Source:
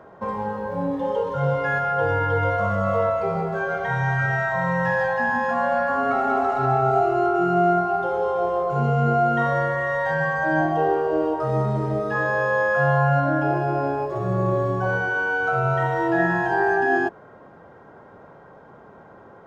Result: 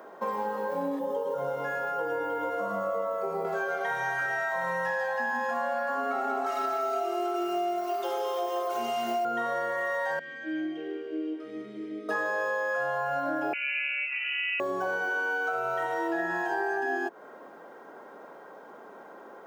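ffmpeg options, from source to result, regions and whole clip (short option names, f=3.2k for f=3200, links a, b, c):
-filter_complex "[0:a]asettb=1/sr,asplit=3[a][b][c];[a]atrim=end=0.994[d];[b]atrim=start=0.99:end=3.45,asetpts=PTS-STARTPTS,afade=t=in:d=0.004:c=qsin,afade=t=out:st=2.456:d=0.004:c=qsin,equalizer=f=2.9k:w=0.38:g=-12.5,asplit=2[e][f];[f]adelay=16,volume=-11dB[g];[e][g]amix=inputs=2:normalize=0,atrim=end_sample=108486,aecho=1:1:109:0.631,atrim=end_sample=108486[h];[c]atrim=start=3.446[i];[d][h]acrossfade=d=0.004:c1=hsin:c2=qsin[j];[j][i]acrossfade=d=0.004:c1=qsin:c2=hsin,asettb=1/sr,asplit=3[k][l][m];[k]atrim=end=6.464[n];[l]atrim=start=6.46:end=9.25,asetpts=PTS-STARTPTS,afade=t=in:d=0.004:c=qsin,afade=t=out:st=2.786:d=0.004:c=qsin,tiltshelf=f=1.2k:g=-6.5,aecho=1:1:3.2:0.98,atrim=end_sample=123039[o];[m]atrim=start=9.246[p];[n][o]acrossfade=d=0.004:c1=hsin:c2=qsin[q];[q][p]acrossfade=d=0.004:c1=qsin:c2=hsin,asettb=1/sr,asplit=3[r][s][t];[r]atrim=end=10.194[u];[s]atrim=start=10.19:end=12.09,asetpts=PTS-STARTPTS,afade=t=in:d=0.004:c=qsin,afade=t=out:st=1.896:d=0.004:c=qsin,acontrast=21,asplit=3[v][w][x];[v]bandpass=f=270:t=q:w=8,volume=0dB[y];[w]bandpass=f=2.29k:t=q:w=8,volume=-6dB[z];[x]bandpass=f=3.01k:t=q:w=8,volume=-9dB[aa];[y][z][aa]amix=inputs=3:normalize=0[ab];[t]atrim=start=12.086[ac];[u][ab]acrossfade=d=0.004:c1=hsin:c2=qsin[ad];[ad][ac]acrossfade=d=0.004:c1=qsin:c2=hsin,asettb=1/sr,asplit=3[ae][af][ag];[ae]atrim=end=13.534[ah];[af]atrim=start=13.53:end=14.6,asetpts=PTS-STARTPTS,afade=t=in:d=0.004:c=qsin,afade=t=out:st=1.066:d=0.004:c=qsin,highpass=f=870:p=1,lowpass=f=2.6k:t=q:w=0.5098,lowpass=f=2.6k:t=q:w=0.6013,lowpass=f=2.6k:t=q:w=0.9,lowpass=f=2.6k:t=q:w=2.563,afreqshift=-3100[ai];[ag]atrim=start=14.596[aj];[ah][ai]acrossfade=d=0.004:c1=hsin:c2=qsin[ak];[ak][aj]acrossfade=d=0.004:c1=qsin:c2=hsin,highpass=f=250:w=0.5412,highpass=f=250:w=1.3066,aemphasis=mode=production:type=50fm,acompressor=threshold=-27dB:ratio=6"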